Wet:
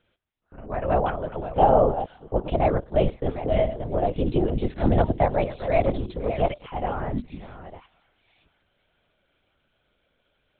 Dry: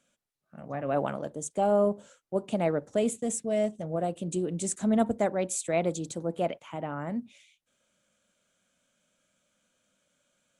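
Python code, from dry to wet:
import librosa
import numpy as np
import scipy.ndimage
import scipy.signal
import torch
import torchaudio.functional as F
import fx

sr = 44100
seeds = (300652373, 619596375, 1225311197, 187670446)

p1 = fx.reverse_delay(x, sr, ms=605, wet_db=-11)
p2 = fx.dynamic_eq(p1, sr, hz=810.0, q=3.9, threshold_db=-45.0, ratio=4.0, max_db=7)
p3 = p2 + fx.echo_wet_highpass(p2, sr, ms=510, feedback_pct=51, hz=2200.0, wet_db=-18, dry=0)
p4 = fx.lpc_vocoder(p3, sr, seeds[0], excitation='whisper', order=10)
p5 = fx.band_squash(p4, sr, depth_pct=70, at=(4.18, 5.39))
y = F.gain(torch.from_numpy(p5), 4.5).numpy()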